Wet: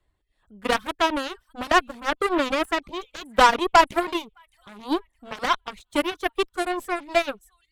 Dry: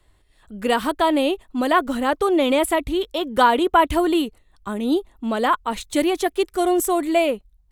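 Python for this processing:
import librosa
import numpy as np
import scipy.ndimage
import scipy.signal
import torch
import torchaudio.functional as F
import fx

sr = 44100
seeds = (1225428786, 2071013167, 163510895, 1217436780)

p1 = fx.high_shelf(x, sr, hz=4500.0, db=-7.5)
p2 = fx.echo_wet_highpass(p1, sr, ms=614, feedback_pct=40, hz=2100.0, wet_db=-13.5)
p3 = 10.0 ** (-17.0 / 20.0) * np.tanh(p2 / 10.0 ** (-17.0 / 20.0))
p4 = p2 + F.gain(torch.from_numpy(p3), -10.0).numpy()
p5 = fx.dereverb_blind(p4, sr, rt60_s=0.75)
p6 = fx.cheby_harmonics(p5, sr, harmonics=(2, 7), levels_db=(-11, -15), full_scale_db=-3.5)
y = F.gain(torch.from_numpy(p6), -1.0).numpy()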